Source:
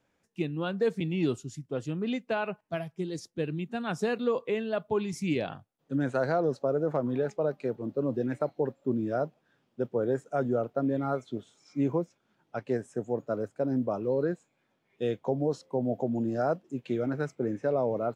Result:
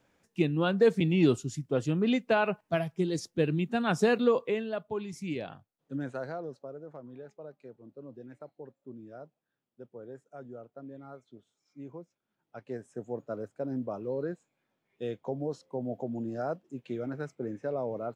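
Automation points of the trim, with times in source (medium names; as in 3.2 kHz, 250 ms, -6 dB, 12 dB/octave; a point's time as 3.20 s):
4.21 s +4.5 dB
4.90 s -6 dB
5.96 s -6 dB
6.85 s -17 dB
11.86 s -17 dB
13.07 s -5.5 dB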